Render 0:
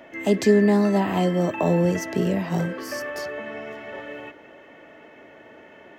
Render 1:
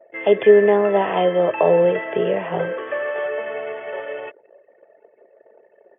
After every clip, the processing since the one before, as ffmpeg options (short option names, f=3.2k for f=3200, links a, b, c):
-af "anlmdn=0.631,lowshelf=f=350:t=q:w=3:g=-8.5,afftfilt=real='re*between(b*sr/4096,100,3500)':imag='im*between(b*sr/4096,100,3500)':win_size=4096:overlap=0.75,volume=4dB"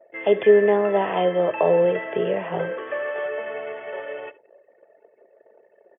-af "aecho=1:1:72:0.1,volume=-3dB"